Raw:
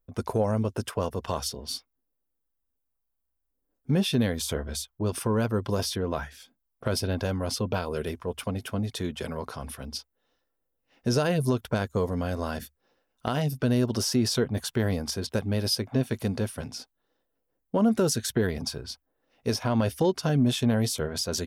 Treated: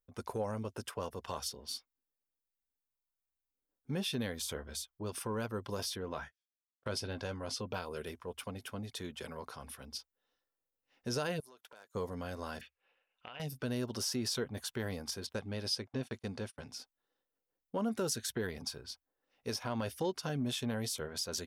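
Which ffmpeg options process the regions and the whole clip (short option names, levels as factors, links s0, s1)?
-filter_complex "[0:a]asettb=1/sr,asplit=3[s0][s1][s2];[s0]atrim=end=6.094[s3];[s1]atrim=start=6.09:end=7.61,asetpts=PTS-STARTPTS,afade=t=in:d=0.004:c=qsin,afade=t=out:st=1.516:d=0.004:c=qsin,agate=range=0.0112:threshold=0.00794:ratio=16:release=100:detection=peak,lowpass=8700,asplit=2[s4][s5];[s5]adelay=19,volume=0.224[s6];[s4][s6]amix=inputs=2:normalize=0,atrim=end_sample=67032[s7];[s2]atrim=start=7.606[s8];[s3][s7]acrossfade=d=0.004:c1=hsin:c2=qsin[s9];[s9][s8]acrossfade=d=0.004:c1=qsin:c2=hsin,asettb=1/sr,asplit=3[s10][s11][s12];[s10]atrim=end=11.404[s13];[s11]atrim=start=11.4:end=11.95,asetpts=PTS-STARTPTS,afade=t=in:d=0.004:c=qsin,afade=t=out:st=0.546:d=0.004:c=qsin,acompressor=threshold=0.00794:ratio=3:attack=3.2:release=140:knee=1:detection=peak,highpass=500,aeval=exprs='0.015*(abs(mod(val(0)/0.015+3,4)-2)-1)':c=same[s14];[s12]atrim=start=11.946[s15];[s13][s14]acrossfade=d=0.004:c1=hsin:c2=qsin[s16];[s16][s15]acrossfade=d=0.004:c1=qsin:c2=hsin,asettb=1/sr,asplit=3[s17][s18][s19];[s17]atrim=end=12.614[s20];[s18]atrim=start=12.61:end=13.4,asetpts=PTS-STARTPTS,afade=t=in:d=0.004:c=qsin,afade=t=out:st=0.786:d=0.004:c=qsin,lowshelf=f=400:t=q:w=1.5:g=-6,acompressor=threshold=0.0126:ratio=5:attack=3.2:release=140:knee=1:detection=peak,lowpass=f=2600:t=q:w=5.1[s21];[s19]atrim=start=13.396[s22];[s20][s21]acrossfade=d=0.004:c1=hsin:c2=qsin[s23];[s23][s22]acrossfade=d=0.004:c1=qsin:c2=hsin,asettb=1/sr,asplit=3[s24][s25][s26];[s24]atrim=end=15.334[s27];[s25]atrim=start=15.33:end=16.68,asetpts=PTS-STARTPTS,afade=t=in:d=0.004:c=qsin,afade=t=out:st=1.346:d=0.004:c=qsin,lowpass=8200,agate=range=0.0355:threshold=0.0112:ratio=16:release=100:detection=peak[s28];[s26]atrim=start=16.676[s29];[s27][s28]acrossfade=d=0.004:c1=hsin:c2=qsin[s30];[s30][s29]acrossfade=d=0.004:c1=qsin:c2=hsin,lowshelf=f=430:g=-7.5,bandreject=f=660:w=12,volume=0.447"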